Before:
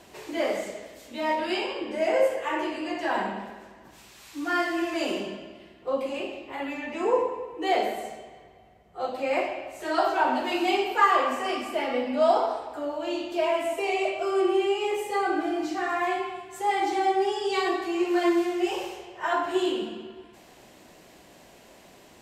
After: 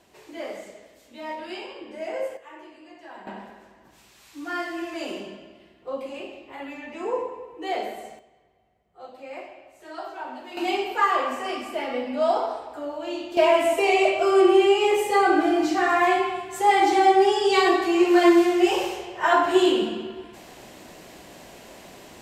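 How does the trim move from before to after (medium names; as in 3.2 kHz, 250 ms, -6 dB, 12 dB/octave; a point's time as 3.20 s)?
-7.5 dB
from 2.37 s -16 dB
from 3.27 s -4 dB
from 8.19 s -12 dB
from 10.57 s -1 dB
from 13.37 s +7 dB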